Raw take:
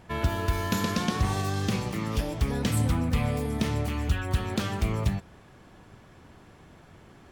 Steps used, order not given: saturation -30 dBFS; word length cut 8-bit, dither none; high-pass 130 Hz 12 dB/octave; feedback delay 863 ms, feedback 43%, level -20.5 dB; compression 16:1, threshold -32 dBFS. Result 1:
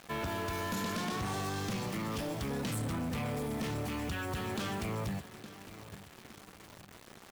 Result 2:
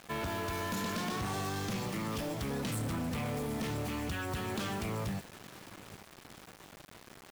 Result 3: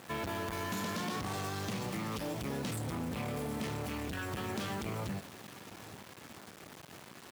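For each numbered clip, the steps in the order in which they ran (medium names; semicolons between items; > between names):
high-pass > word length cut > feedback delay > saturation > compression; high-pass > saturation > compression > feedback delay > word length cut; saturation > feedback delay > word length cut > high-pass > compression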